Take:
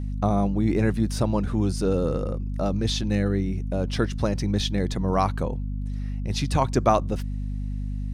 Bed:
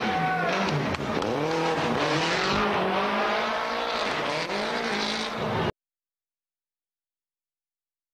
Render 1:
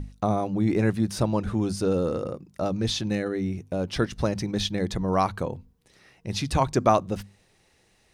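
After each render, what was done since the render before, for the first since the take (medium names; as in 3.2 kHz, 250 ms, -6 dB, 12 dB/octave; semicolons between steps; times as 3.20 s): hum notches 50/100/150/200/250 Hz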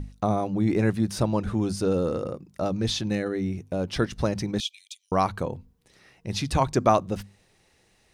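4.60–5.12 s: rippled Chebyshev high-pass 2.3 kHz, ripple 6 dB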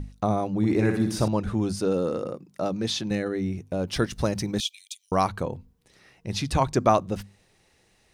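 0.57–1.28 s: flutter echo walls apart 10.4 m, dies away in 0.6 s; 1.79–3.11 s: high-pass 150 Hz; 3.87–5.28 s: treble shelf 7.6 kHz +10 dB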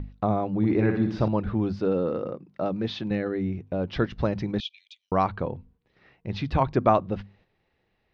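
gate -57 dBFS, range -7 dB; Bessel low-pass 2.6 kHz, order 6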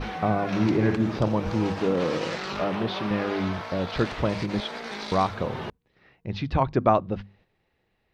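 add bed -8 dB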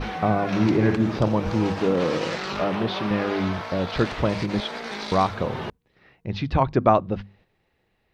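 trim +2.5 dB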